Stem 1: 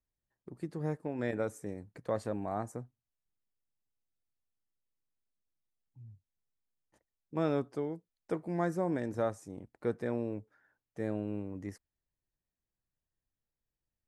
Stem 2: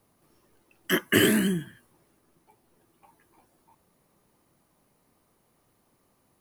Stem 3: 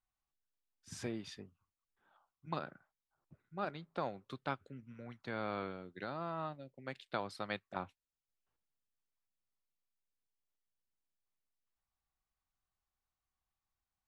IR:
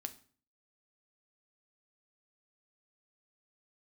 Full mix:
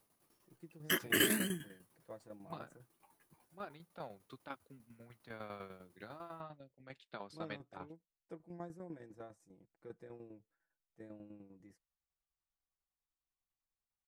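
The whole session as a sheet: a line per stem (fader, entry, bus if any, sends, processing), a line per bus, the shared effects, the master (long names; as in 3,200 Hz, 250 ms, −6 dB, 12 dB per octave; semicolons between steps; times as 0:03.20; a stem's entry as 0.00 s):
−16.0 dB, 0.00 s, no send, comb filter 6 ms
−6.5 dB, 0.00 s, no send, spectral tilt +1.5 dB per octave
−1.0 dB, 0.00 s, no send, flanger 0.25 Hz, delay 1.3 ms, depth 8.8 ms, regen −54%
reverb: not used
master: shaped tremolo saw down 10 Hz, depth 70%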